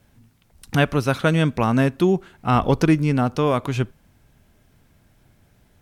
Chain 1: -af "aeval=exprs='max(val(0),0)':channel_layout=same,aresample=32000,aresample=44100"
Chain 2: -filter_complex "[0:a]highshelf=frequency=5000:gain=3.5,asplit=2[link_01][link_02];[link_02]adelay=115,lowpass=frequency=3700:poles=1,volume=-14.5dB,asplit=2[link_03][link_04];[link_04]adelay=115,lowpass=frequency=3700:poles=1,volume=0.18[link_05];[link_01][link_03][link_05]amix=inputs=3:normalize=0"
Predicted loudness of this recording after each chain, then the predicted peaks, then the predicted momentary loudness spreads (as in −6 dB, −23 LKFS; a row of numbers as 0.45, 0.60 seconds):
−26.5, −20.5 LKFS; −8.0, −4.0 dBFS; 7, 7 LU